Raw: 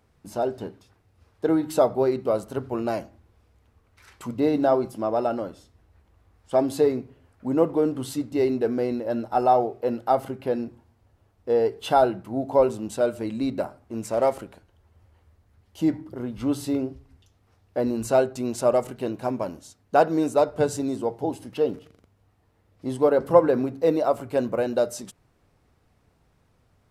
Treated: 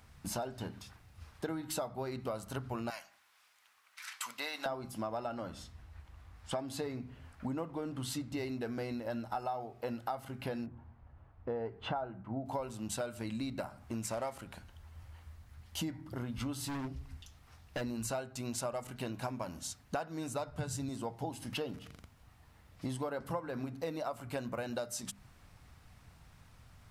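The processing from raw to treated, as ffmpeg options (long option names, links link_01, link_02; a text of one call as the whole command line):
ffmpeg -i in.wav -filter_complex "[0:a]asettb=1/sr,asplit=3[link_01][link_02][link_03];[link_01]atrim=end=2.904[link_04];[link_02]atrim=start=2.9:end=4.66,asetpts=PTS-STARTPTS,afade=type=in:duration=0.004:curve=qsin,afade=type=out:start_time=1.756:duration=0.004:curve=qsin,highpass=1200[link_05];[link_03]atrim=start=4.656[link_06];[link_04][link_05]acrossfade=duration=0.004:curve1=hsin:curve2=qsin[link_07];[link_07][link_06]acrossfade=duration=0.004:curve1=qsin:curve2=hsin,asettb=1/sr,asplit=3[link_08][link_09][link_10];[link_08]atrim=end=5.174[link_11];[link_09]atrim=start=5.17:end=8.37,asetpts=PTS-STARTPTS,afade=type=in:duration=0.004:curve=qsin,afade=type=out:start_time=3.196:duration=0.004:curve=qsin,highshelf=frequency=7500:gain=-6.5[link_12];[link_10]atrim=start=8.366[link_13];[link_11][link_12]acrossfade=duration=0.004:curve1=hsin:curve2=qsin[link_14];[link_14][link_13]acrossfade=duration=0.004:curve1=qsin:curve2=hsin,asettb=1/sr,asplit=3[link_15][link_16][link_17];[link_15]atrim=end=10.664[link_18];[link_16]atrim=start=10.66:end=12.46,asetpts=PTS-STARTPTS,afade=type=in:duration=0.004:curve=qsin,afade=type=out:start_time=1.796:duration=0.004:curve=qsin,lowpass=1400[link_19];[link_17]atrim=start=12.456[link_20];[link_18][link_19]acrossfade=duration=0.004:curve1=hsin:curve2=qsin[link_21];[link_21][link_20]acrossfade=duration=0.004:curve1=qsin:curve2=hsin,asplit=3[link_22][link_23][link_24];[link_22]afade=type=out:start_time=16.62:duration=0.02[link_25];[link_23]asoftclip=type=hard:threshold=-28.5dB,afade=type=in:start_time=16.62:duration=0.02,afade=type=out:start_time=17.8:duration=0.02[link_26];[link_24]afade=type=in:start_time=17.8:duration=0.02[link_27];[link_25][link_26][link_27]amix=inputs=3:normalize=0,asettb=1/sr,asplit=3[link_28][link_29][link_30];[link_28]atrim=end=20.034[link_31];[link_29]atrim=start=20.03:end=20.89,asetpts=PTS-STARTPTS,afade=type=in:duration=0.004:curve=qsin,afade=type=out:start_time=0.856:duration=0.004:curve=qsin,asubboost=boost=9:cutoff=210[link_32];[link_30]atrim=start=20.886[link_33];[link_31][link_32]acrossfade=duration=0.004:curve1=hsin:curve2=qsin[link_34];[link_34][link_33]acrossfade=duration=0.004:curve1=qsin:curve2=hsin,equalizer=frequency=410:width_type=o:width=1.5:gain=-13.5,bandreject=frequency=50:width_type=h:width=6,bandreject=frequency=100:width_type=h:width=6,bandreject=frequency=150:width_type=h:width=6,bandreject=frequency=200:width_type=h:width=6,bandreject=frequency=250:width_type=h:width=6,acompressor=threshold=-44dB:ratio=8,volume=8.5dB" out.wav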